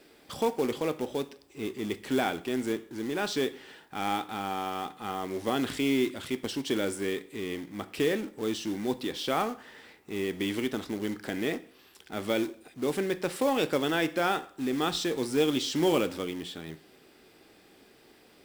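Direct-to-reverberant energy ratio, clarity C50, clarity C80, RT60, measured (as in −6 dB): 11.5 dB, 17.0 dB, 21.0 dB, 0.50 s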